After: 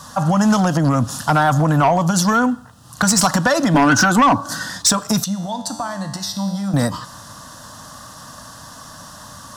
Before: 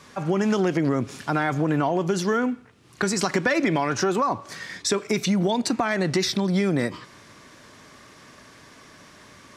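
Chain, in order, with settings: treble shelf 11 kHz +11.5 dB; static phaser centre 940 Hz, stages 4; 3.74–4.70 s: small resonant body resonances 280/1500 Hz, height 14 dB; 5.24–6.74 s: feedback comb 98 Hz, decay 1.4 s, harmonics all, mix 80%; sine folder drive 8 dB, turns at -9.5 dBFS; trim +1.5 dB

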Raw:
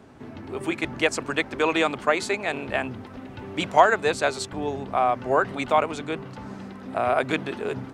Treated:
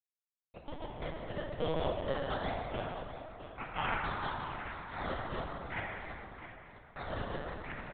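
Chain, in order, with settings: pitch shift switched off and on -2 st, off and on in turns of 360 ms; spectral selection erased 0.66–1.12 s, 370–1800 Hz; Schmitt trigger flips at -21.5 dBFS; band-pass sweep 620 Hz -> 2.2 kHz, 1.67–5.36 s; decimation with a swept rate 15×, swing 60% 1 Hz; feedback delay 664 ms, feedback 28%, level -11.5 dB; plate-style reverb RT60 2.5 s, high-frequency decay 0.55×, DRR -2 dB; LPC vocoder at 8 kHz pitch kept

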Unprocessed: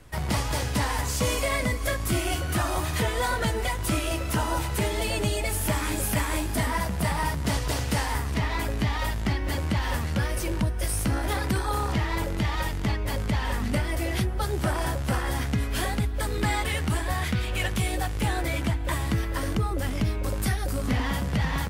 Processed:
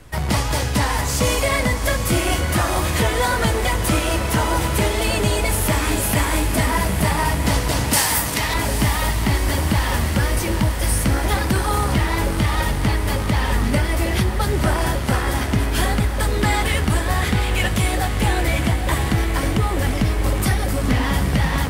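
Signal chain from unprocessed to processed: 7.93–8.54 s: RIAA curve recording; echo that smears into a reverb 816 ms, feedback 72%, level -9 dB; trim +6.5 dB

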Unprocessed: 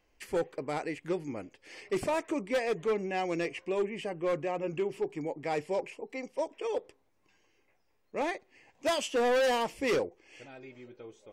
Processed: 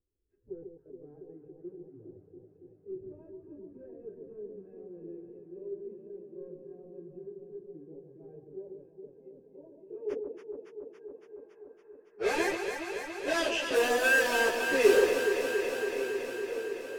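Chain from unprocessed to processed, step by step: tone controls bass -13 dB, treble -9 dB; hum notches 50/100/150/200 Hz; small resonant body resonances 390/1600/2600 Hz, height 17 dB, ringing for 35 ms; low-pass sweep 100 Hz -> 6 kHz, 6.26–8.88 s; in parallel at -4.5 dB: integer overflow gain 25 dB; on the sum: level-controlled noise filter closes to 2 kHz, open at -18.5 dBFS; plain phase-vocoder stretch 1.5×; on a send: echo whose repeats swap between lows and highs 140 ms, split 970 Hz, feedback 88%, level -5 dB; on the sum: trim -2 dB

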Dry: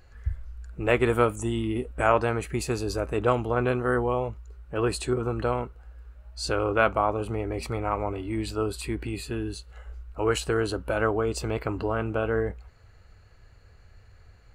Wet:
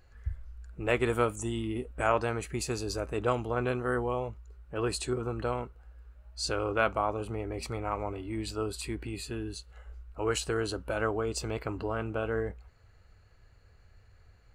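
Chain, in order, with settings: dynamic bell 6.1 kHz, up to +6 dB, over -47 dBFS, Q 0.78; trim -5.5 dB

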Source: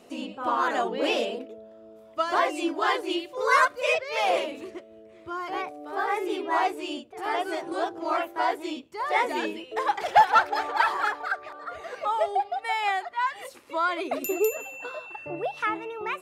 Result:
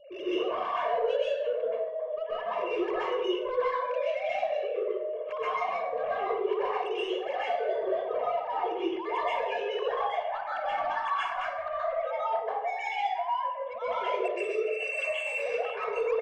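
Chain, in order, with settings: formants replaced by sine waves; peaking EQ 1.5 kHz -11 dB 1.1 oct; comb 1.8 ms, depth 98%; compression 10:1, threshold -38 dBFS, peak gain reduction 27 dB; peak limiter -38.5 dBFS, peak gain reduction 10 dB; saturation -40 dBFS, distortion -20 dB; feedback echo behind a band-pass 60 ms, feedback 65%, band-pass 560 Hz, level -10 dB; plate-style reverb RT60 0.65 s, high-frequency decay 0.75×, pre-delay 115 ms, DRR -9.5 dB; trim +6 dB

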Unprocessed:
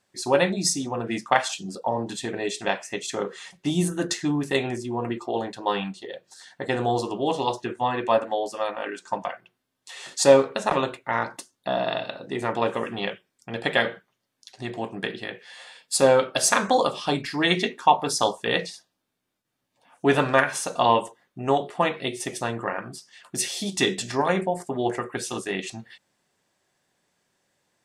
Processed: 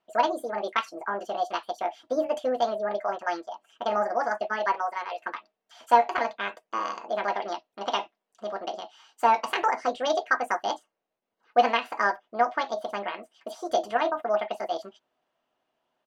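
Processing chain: low-pass 1.9 kHz 12 dB/octave; doubling 14 ms -12.5 dB; speed mistake 45 rpm record played at 78 rpm; peaking EQ 680 Hz +10 dB 0.65 oct; trim -6.5 dB

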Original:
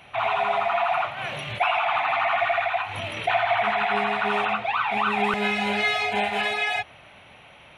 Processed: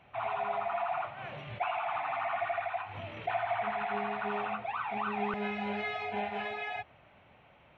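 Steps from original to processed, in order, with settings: tape spacing loss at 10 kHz 32 dB; trim -7 dB

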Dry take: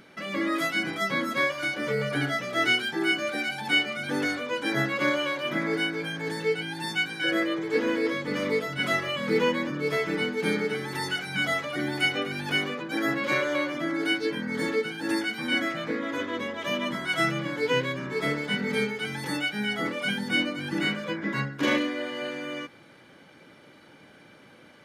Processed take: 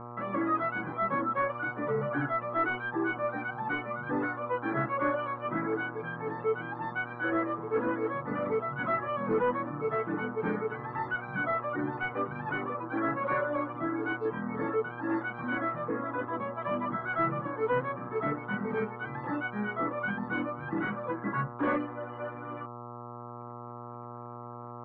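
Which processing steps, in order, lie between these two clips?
reverb removal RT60 2 s; waveshaping leveller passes 2; mains buzz 120 Hz, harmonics 11, -36 dBFS -3 dB/octave; four-pole ladder low-pass 1.5 kHz, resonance 45%

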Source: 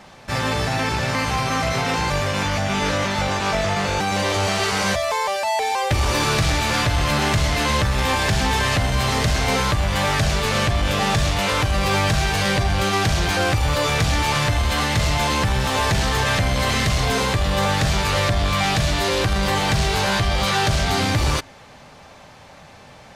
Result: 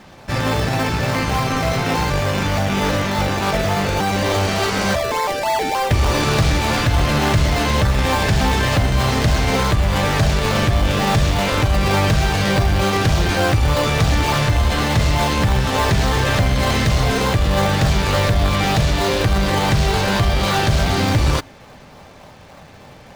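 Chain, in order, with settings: treble shelf 11 kHz -9.5 dB; in parallel at -4 dB: decimation with a swept rate 28×, swing 100% 3.4 Hz

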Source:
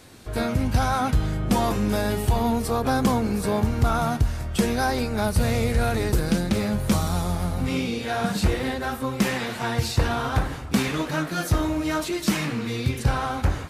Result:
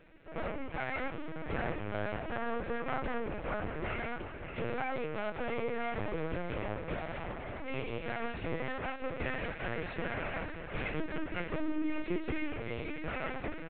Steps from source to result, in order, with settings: comb filter that takes the minimum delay 0.48 ms; elliptic band-pass 280–3000 Hz, stop band 40 dB; comb 6.1 ms, depth 52%; peak limiter -20 dBFS, peak gain reduction 5 dB; distance through air 120 m; feedback delay 584 ms, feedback 52%, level -9 dB; LPC vocoder at 8 kHz pitch kept; trim -5.5 dB

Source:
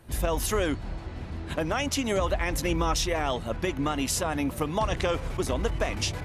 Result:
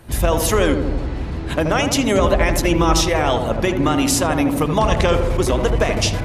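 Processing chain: filtered feedback delay 80 ms, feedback 75%, low-pass 950 Hz, level -4.5 dB; trim +9 dB

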